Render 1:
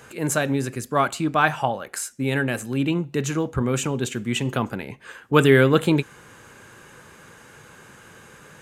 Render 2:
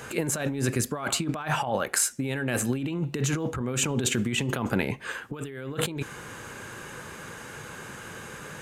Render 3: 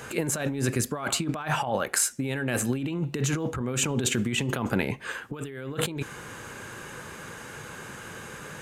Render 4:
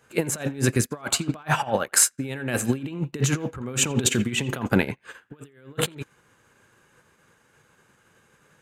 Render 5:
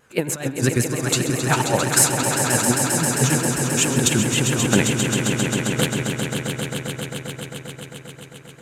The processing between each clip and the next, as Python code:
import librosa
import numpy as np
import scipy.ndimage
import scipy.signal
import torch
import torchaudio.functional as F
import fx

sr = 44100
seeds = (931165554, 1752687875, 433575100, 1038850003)

y1 = fx.over_compress(x, sr, threshold_db=-29.0, ratio=-1.0)
y2 = y1
y3 = fx.echo_banded(y2, sr, ms=85, feedback_pct=49, hz=1800.0, wet_db=-14.0)
y3 = fx.upward_expand(y3, sr, threshold_db=-44.0, expansion=2.5)
y3 = y3 * librosa.db_to_amplitude(8.0)
y4 = fx.echo_swell(y3, sr, ms=133, loudest=5, wet_db=-8)
y4 = fx.vibrato(y4, sr, rate_hz=7.6, depth_cents=85.0)
y4 = y4 * librosa.db_to_amplitude(2.0)